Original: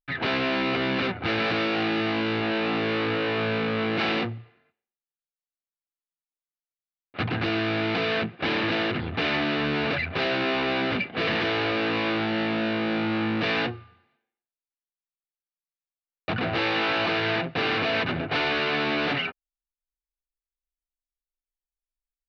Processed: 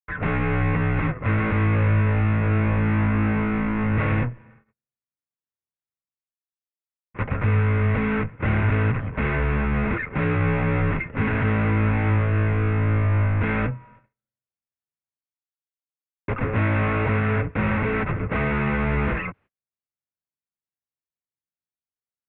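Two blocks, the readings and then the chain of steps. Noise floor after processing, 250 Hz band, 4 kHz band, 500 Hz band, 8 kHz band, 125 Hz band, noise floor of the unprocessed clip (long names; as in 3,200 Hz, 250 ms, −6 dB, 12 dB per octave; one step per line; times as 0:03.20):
below −85 dBFS, +2.5 dB, below −15 dB, −1.0 dB, can't be measured, +14.5 dB, below −85 dBFS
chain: single-sideband voice off tune −230 Hz 240–2,600 Hz
parametric band 110 Hz +11 dB 2.2 octaves
reversed playback
upward compression, threshold −43 dBFS
reversed playback
noise gate −50 dBFS, range −37 dB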